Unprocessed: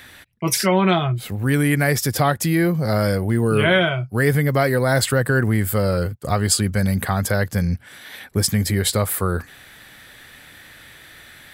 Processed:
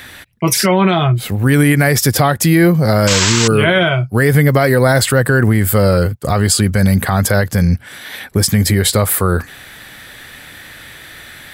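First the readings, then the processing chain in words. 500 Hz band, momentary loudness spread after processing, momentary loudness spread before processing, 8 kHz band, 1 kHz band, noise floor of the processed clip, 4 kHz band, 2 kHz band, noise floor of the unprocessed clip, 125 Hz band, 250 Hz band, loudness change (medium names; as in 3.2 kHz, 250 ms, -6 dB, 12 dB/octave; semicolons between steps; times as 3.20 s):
+6.0 dB, 6 LU, 7 LU, +7.5 dB, +5.5 dB, -37 dBFS, +7.5 dB, +6.0 dB, -46 dBFS, +7.0 dB, +7.0 dB, +6.5 dB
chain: painted sound noise, 3.07–3.48 s, 870–8100 Hz -20 dBFS; peak limiter -11 dBFS, peak gain reduction 7 dB; trim +8.5 dB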